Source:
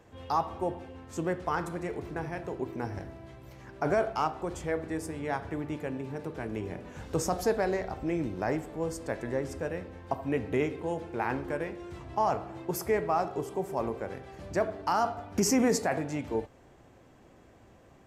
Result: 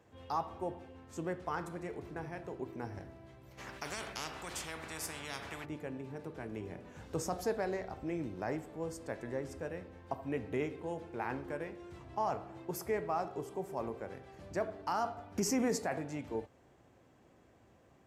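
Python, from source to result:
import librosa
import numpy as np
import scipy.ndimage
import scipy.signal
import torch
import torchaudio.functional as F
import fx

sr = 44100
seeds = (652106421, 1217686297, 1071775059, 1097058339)

y = scipy.signal.sosfilt(scipy.signal.butter(2, 57.0, 'highpass', fs=sr, output='sos'), x)
y = fx.spectral_comp(y, sr, ratio=4.0, at=(3.57, 5.64), fade=0.02)
y = F.gain(torch.from_numpy(y), -7.0).numpy()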